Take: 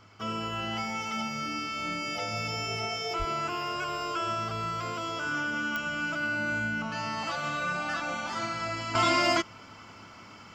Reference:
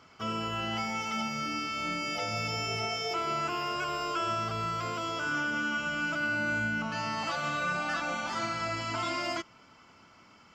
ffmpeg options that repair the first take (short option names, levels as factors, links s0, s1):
-filter_complex "[0:a]adeclick=t=4,bandreject=f=104.1:t=h:w=4,bandreject=f=208.2:t=h:w=4,bandreject=f=312.3:t=h:w=4,bandreject=f=416.4:t=h:w=4,asplit=3[s0][s1][s2];[s0]afade=t=out:st=3.18:d=0.02[s3];[s1]highpass=f=140:w=0.5412,highpass=f=140:w=1.3066,afade=t=in:st=3.18:d=0.02,afade=t=out:st=3.3:d=0.02[s4];[s2]afade=t=in:st=3.3:d=0.02[s5];[s3][s4][s5]amix=inputs=3:normalize=0,asetnsamples=n=441:p=0,asendcmd='8.95 volume volume -8.5dB',volume=1"